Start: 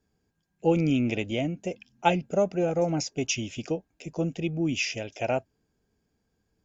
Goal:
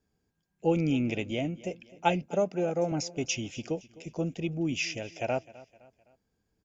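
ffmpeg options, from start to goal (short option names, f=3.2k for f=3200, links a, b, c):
-filter_complex "[0:a]asettb=1/sr,asplit=3[a][b][c];[a]atrim=end=2.264[d];[b]atrim=start=2.26:end=2.92,asetpts=PTS-STARTPTS,afade=t=in:d=0.004:c=qsin,afade=t=out:st=0.656:d=0.004:c=qsin,highpass=140[e];[c]atrim=start=2.916[f];[d][e]acrossfade=d=0.004:c1=hsin:c2=qsin[g];[g][f]acrossfade=d=0.004:c1=qsin:c2=hsin,aecho=1:1:257|514|771:0.1|0.043|0.0185,volume=-3dB"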